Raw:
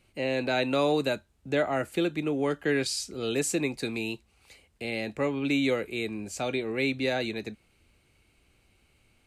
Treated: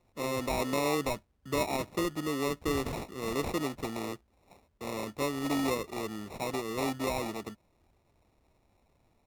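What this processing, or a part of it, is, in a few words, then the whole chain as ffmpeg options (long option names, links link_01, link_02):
crushed at another speed: -af "asetrate=35280,aresample=44100,acrusher=samples=35:mix=1:aa=0.000001,asetrate=55125,aresample=44100,volume=-4dB"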